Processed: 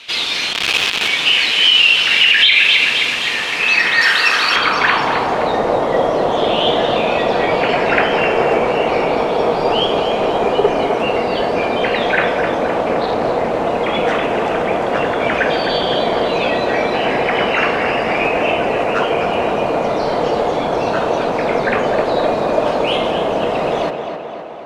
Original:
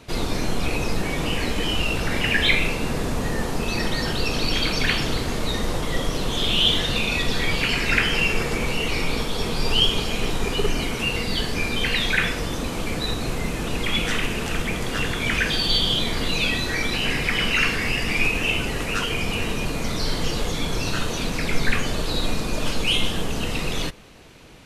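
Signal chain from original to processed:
0:00.53–0:01.08: each half-wave held at its own peak
tape delay 258 ms, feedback 65%, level −7 dB, low-pass 4,200 Hz
band-pass filter sweep 3,100 Hz → 660 Hz, 0:03.27–0:05.65
0:04.01–0:04.56: spectral tilt +2.5 dB per octave
boost into a limiter +20.5 dB
0:12.74–0:13.66: highs frequency-modulated by the lows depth 0.22 ms
level −1 dB

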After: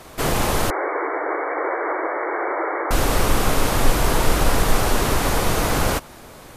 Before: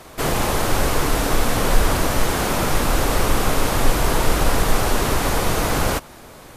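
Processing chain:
0:00.70–0:02.91: linear-phase brick-wall band-pass 300–2,300 Hz

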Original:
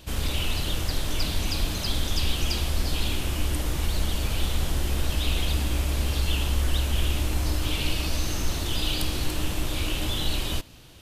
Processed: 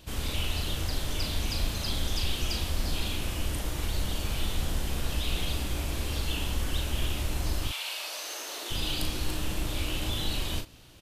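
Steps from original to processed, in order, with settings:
0:07.67–0:08.70: high-pass filter 780 Hz → 350 Hz 24 dB per octave
double-tracking delay 38 ms −5.5 dB
level −4.5 dB

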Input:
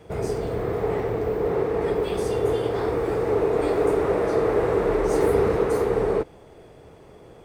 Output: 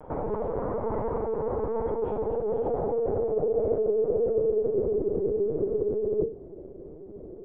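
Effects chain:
high-pass filter 46 Hz 6 dB per octave
mains-hum notches 50/100/150/200/250/300/350/400/450/500 Hz
reversed playback
downward compressor 10 to 1, threshold −30 dBFS, peak gain reduction 14.5 dB
reversed playback
low-pass filter sweep 1,000 Hz → 370 Hz, 0:01.63–0:05.07
on a send at −19 dB: convolution reverb RT60 0.45 s, pre-delay 6 ms
on the sum: linear-prediction vocoder at 8 kHz pitch kept
level +2.5 dB

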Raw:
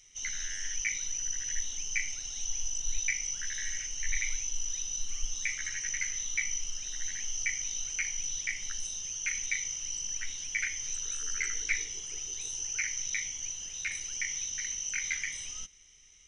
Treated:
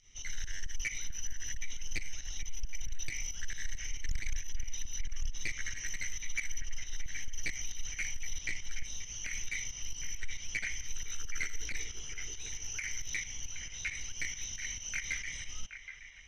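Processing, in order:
low-pass filter 5,200 Hz 12 dB per octave
low-shelf EQ 150 Hz +11 dB
soft clipping −26 dBFS, distortion −8 dB
fake sidechain pumping 136 BPM, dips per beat 2, −11 dB, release 115 ms
on a send: delay with a band-pass on its return 772 ms, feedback 51%, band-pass 1,400 Hz, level −9.5 dB
on the sum: highs frequency-modulated by the lows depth 0.25 ms

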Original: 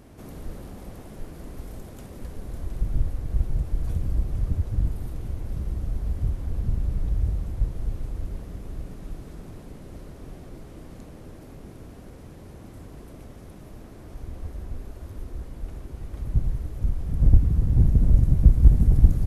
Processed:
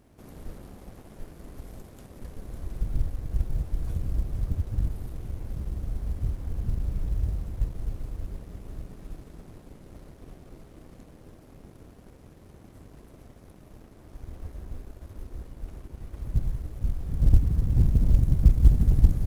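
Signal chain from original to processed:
mu-law and A-law mismatch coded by A
level −2.5 dB

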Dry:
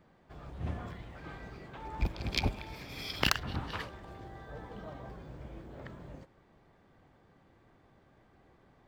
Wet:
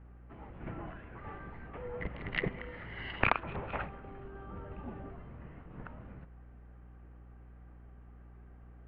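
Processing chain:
single-sideband voice off tune −390 Hz 240–2,900 Hz
hum with harmonics 60 Hz, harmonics 5, −56 dBFS −9 dB per octave
level +3 dB

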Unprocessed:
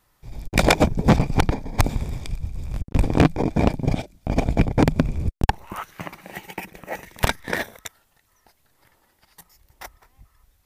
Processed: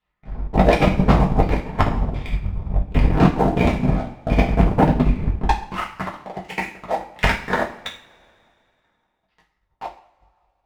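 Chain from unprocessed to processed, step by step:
auto-filter low-pass saw down 1.4 Hz 590–3,200 Hz
leveller curve on the samples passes 3
convolution reverb, pre-delay 3 ms, DRR −4.5 dB
transient designer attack +4 dB, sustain −3 dB
level −13.5 dB

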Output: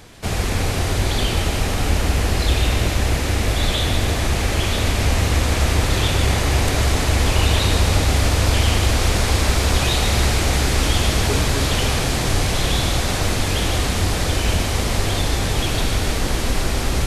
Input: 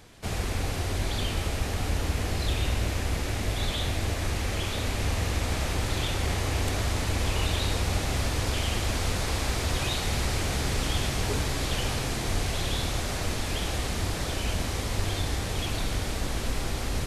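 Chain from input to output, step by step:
echo with a time of its own for lows and highs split 1,500 Hz, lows 264 ms, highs 149 ms, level −7 dB
level +8.5 dB

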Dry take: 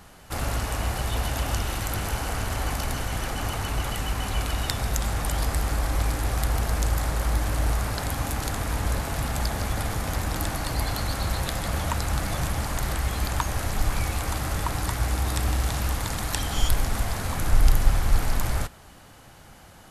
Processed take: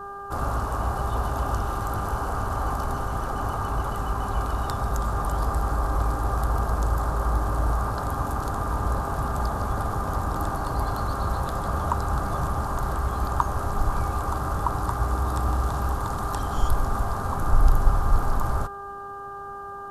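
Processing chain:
hum with harmonics 400 Hz, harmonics 4, −40 dBFS 0 dB per octave
high shelf with overshoot 1,600 Hz −9.5 dB, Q 3

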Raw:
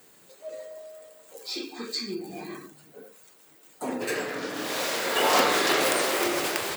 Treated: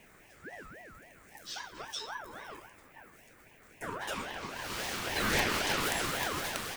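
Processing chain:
pitch vibrato 2.2 Hz 11 cents
noise in a band 340–1,500 Hz −52 dBFS
ring modulator whose carrier an LFO sweeps 1,000 Hz, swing 35%, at 3.7 Hz
level −5 dB

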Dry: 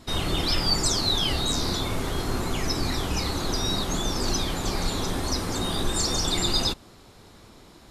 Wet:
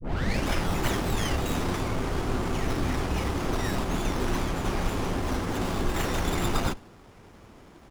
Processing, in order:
turntable start at the beginning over 0.51 s
downsampling to 22,050 Hz
on a send at −20 dB: convolution reverb, pre-delay 59 ms
on the sum: windowed peak hold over 9 samples

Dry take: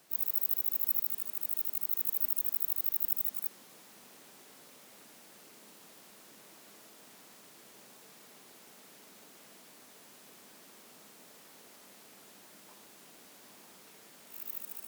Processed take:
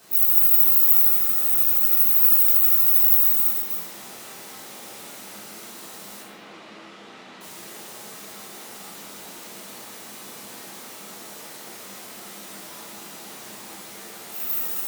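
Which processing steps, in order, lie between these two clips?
delay that plays each chunk backwards 163 ms, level −5 dB
0:06.21–0:07.41: Chebyshev band-pass filter 160–3,000 Hz, order 2
dense smooth reverb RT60 0.7 s, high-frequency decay 0.8×, DRR −6 dB
level +8 dB

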